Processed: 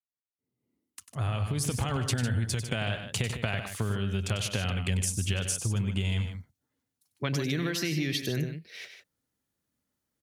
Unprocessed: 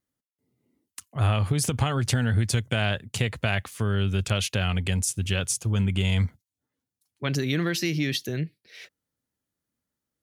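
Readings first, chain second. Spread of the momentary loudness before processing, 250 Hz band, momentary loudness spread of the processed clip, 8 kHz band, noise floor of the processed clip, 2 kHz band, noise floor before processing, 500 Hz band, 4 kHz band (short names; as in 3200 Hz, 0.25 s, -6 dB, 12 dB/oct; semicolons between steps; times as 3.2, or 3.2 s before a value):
7 LU, -4.0 dB, 7 LU, -3.0 dB, under -85 dBFS, -4.5 dB, under -85 dBFS, -4.5 dB, -4.0 dB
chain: opening faded in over 2.28 s; compressor, threshold -28 dBFS, peak gain reduction 10 dB; loudspeakers at several distances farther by 33 m -10 dB, 52 m -10 dB; gain +1.5 dB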